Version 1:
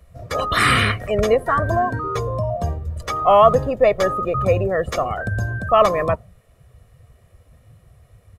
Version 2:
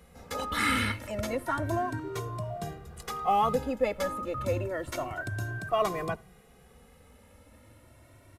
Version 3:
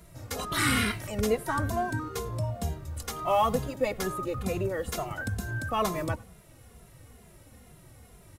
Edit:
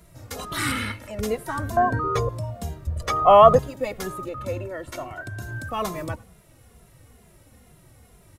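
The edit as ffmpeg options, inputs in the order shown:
-filter_complex "[1:a]asplit=2[s0][s1];[0:a]asplit=2[s2][s3];[2:a]asplit=5[s4][s5][s6][s7][s8];[s4]atrim=end=0.722[s9];[s0]atrim=start=0.718:end=1.192[s10];[s5]atrim=start=1.188:end=1.772[s11];[s2]atrim=start=1.768:end=2.292[s12];[s6]atrim=start=2.288:end=2.872[s13];[s3]atrim=start=2.868:end=3.592[s14];[s7]atrim=start=3.588:end=4.292[s15];[s1]atrim=start=4.288:end=5.422[s16];[s8]atrim=start=5.418[s17];[s9][s10]acrossfade=d=0.004:c1=hsin:c2=hsin[s18];[s18][s11]acrossfade=d=0.004:c1=hsin:c2=hsin[s19];[s19][s12]acrossfade=d=0.004:c1=hsin:c2=hsin[s20];[s20][s13]acrossfade=d=0.004:c1=hsin:c2=hsin[s21];[s21][s14]acrossfade=d=0.004:c1=hsin:c2=hsin[s22];[s22][s15]acrossfade=d=0.004:c1=hsin:c2=hsin[s23];[s23][s16]acrossfade=d=0.004:c1=hsin:c2=hsin[s24];[s24][s17]acrossfade=d=0.004:c1=hsin:c2=hsin"

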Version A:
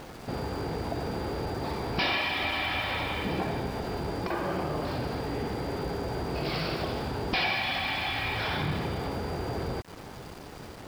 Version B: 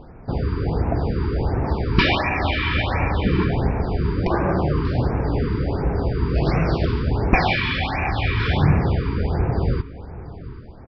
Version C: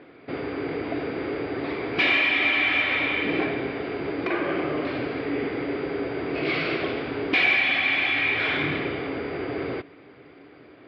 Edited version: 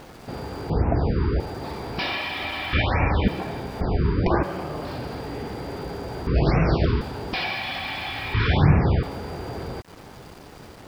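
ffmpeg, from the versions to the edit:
-filter_complex "[1:a]asplit=5[s0][s1][s2][s3][s4];[0:a]asplit=6[s5][s6][s7][s8][s9][s10];[s5]atrim=end=0.702[s11];[s0]atrim=start=0.698:end=1.402[s12];[s6]atrim=start=1.398:end=2.732[s13];[s1]atrim=start=2.728:end=3.282[s14];[s7]atrim=start=3.278:end=3.812[s15];[s2]atrim=start=3.808:end=4.432[s16];[s8]atrim=start=4.428:end=6.272[s17];[s3]atrim=start=6.268:end=7.012[s18];[s9]atrim=start=7.008:end=8.342[s19];[s4]atrim=start=8.338:end=9.032[s20];[s10]atrim=start=9.028[s21];[s11][s12]acrossfade=d=0.004:c1=hsin:c2=hsin[s22];[s22][s13]acrossfade=d=0.004:c1=hsin:c2=hsin[s23];[s23][s14]acrossfade=d=0.004:c1=hsin:c2=hsin[s24];[s24][s15]acrossfade=d=0.004:c1=hsin:c2=hsin[s25];[s25][s16]acrossfade=d=0.004:c1=hsin:c2=hsin[s26];[s26][s17]acrossfade=d=0.004:c1=hsin:c2=hsin[s27];[s27][s18]acrossfade=d=0.004:c1=hsin:c2=hsin[s28];[s28][s19]acrossfade=d=0.004:c1=hsin:c2=hsin[s29];[s29][s20]acrossfade=d=0.004:c1=hsin:c2=hsin[s30];[s30][s21]acrossfade=d=0.004:c1=hsin:c2=hsin"

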